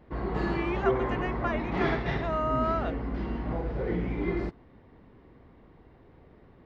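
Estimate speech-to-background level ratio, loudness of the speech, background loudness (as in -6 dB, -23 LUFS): -2.0 dB, -33.5 LUFS, -31.5 LUFS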